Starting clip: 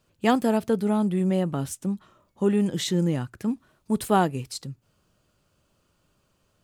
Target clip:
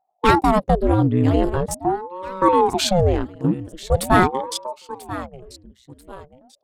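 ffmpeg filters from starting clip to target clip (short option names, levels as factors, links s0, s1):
-filter_complex "[0:a]anlmdn=3.98,equalizer=f=4200:w=2:g=2,asplit=2[s0][s1];[s1]aecho=0:1:989|1978|2967:0.168|0.0554|0.0183[s2];[s0][s2]amix=inputs=2:normalize=0,acontrast=68,aeval=exprs='val(0)*sin(2*PI*410*n/s+410*0.85/0.43*sin(2*PI*0.43*n/s))':c=same,volume=1.41"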